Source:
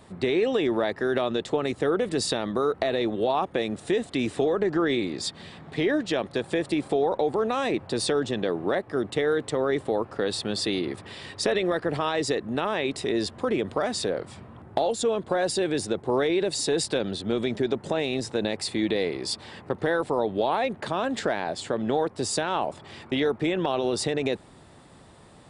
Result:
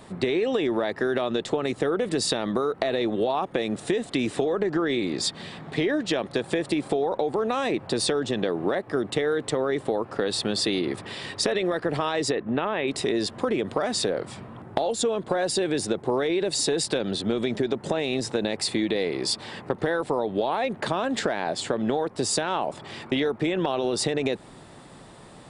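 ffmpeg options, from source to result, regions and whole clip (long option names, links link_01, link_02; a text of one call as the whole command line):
ffmpeg -i in.wav -filter_complex "[0:a]asettb=1/sr,asplit=3[link_01][link_02][link_03];[link_01]atrim=end=12.314[link_04];[link_02]atrim=start=12.31:end=12.88,asetpts=PTS-STARTPTS,afade=type=in:duration=0.004:curve=qsin,afade=type=out:start_time=0.566:duration=0.004:curve=qsin,lowpass=frequency=3300:width=0.5412,lowpass=frequency=3300:width=1.3066,agate=range=-33dB:threshold=-35dB:ratio=3:release=100:detection=peak[link_05];[link_03]atrim=start=12.876[link_06];[link_04][link_05]acrossfade=duration=0.004:curve1=hsin:curve2=qsin[link_07];[link_07][link_06]acrossfade=duration=0.004:curve1=qsin:curve2=hsin,equalizer=frequency=77:width_type=o:width=0.42:gain=-12.5,acompressor=threshold=-26dB:ratio=6,volume=5dB" out.wav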